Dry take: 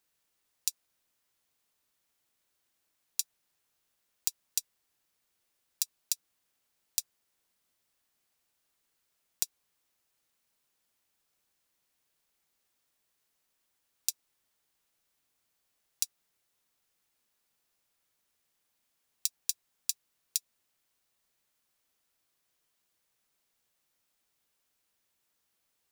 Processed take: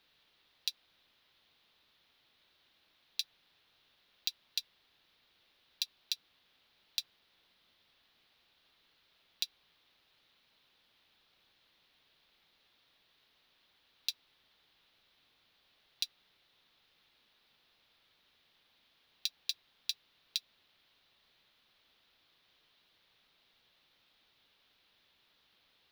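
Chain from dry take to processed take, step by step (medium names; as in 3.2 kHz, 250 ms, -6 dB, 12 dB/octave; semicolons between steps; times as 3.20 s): peak limiter -14 dBFS, peak gain reduction 9.5 dB; resonant high shelf 5.4 kHz -13.5 dB, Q 3; trim +9.5 dB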